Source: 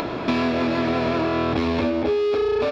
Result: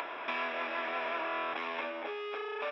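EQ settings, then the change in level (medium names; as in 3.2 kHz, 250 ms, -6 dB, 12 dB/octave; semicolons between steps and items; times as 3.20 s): Savitzky-Golay filter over 25 samples; high-pass 1 kHz 12 dB/octave; band-stop 1.3 kHz, Q 24; -4.5 dB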